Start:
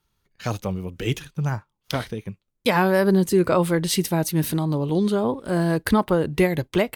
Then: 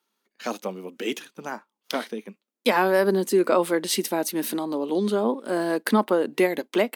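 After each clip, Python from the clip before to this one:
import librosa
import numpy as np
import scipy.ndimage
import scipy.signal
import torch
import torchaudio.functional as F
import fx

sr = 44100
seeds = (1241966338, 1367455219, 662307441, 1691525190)

y = scipy.signal.sosfilt(scipy.signal.ellip(4, 1.0, 50, 220.0, 'highpass', fs=sr, output='sos'), x)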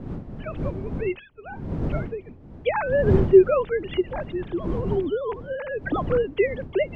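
y = fx.sine_speech(x, sr)
y = fx.dmg_wind(y, sr, seeds[0], corner_hz=210.0, level_db=-30.0)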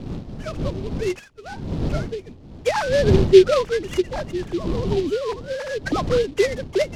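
y = fx.noise_mod_delay(x, sr, seeds[1], noise_hz=3200.0, depth_ms=0.04)
y = y * librosa.db_to_amplitude(2.5)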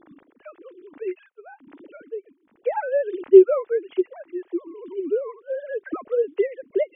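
y = fx.sine_speech(x, sr)
y = y * librosa.db_to_amplitude(-2.5)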